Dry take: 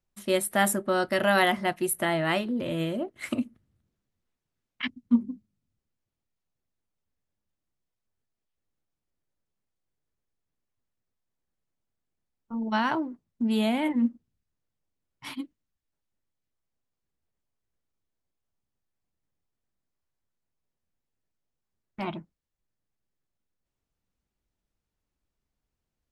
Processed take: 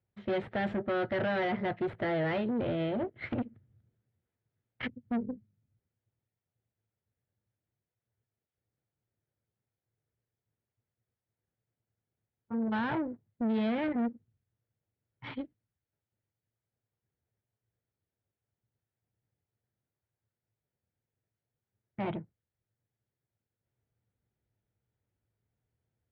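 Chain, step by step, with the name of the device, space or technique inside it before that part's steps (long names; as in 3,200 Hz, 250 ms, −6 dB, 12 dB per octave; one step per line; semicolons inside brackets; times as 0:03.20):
guitar amplifier (tube saturation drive 32 dB, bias 0.7; bass and treble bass +6 dB, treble −13 dB; loudspeaker in its box 100–3,600 Hz, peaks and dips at 110 Hz +10 dB, 180 Hz −6 dB, 270 Hz −5 dB, 460 Hz +3 dB, 1,100 Hz −7 dB, 2,700 Hz −5 dB)
level +4 dB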